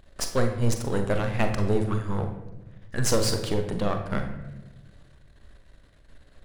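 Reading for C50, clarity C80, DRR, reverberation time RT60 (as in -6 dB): 7.5 dB, 10.0 dB, 5.0 dB, 1.0 s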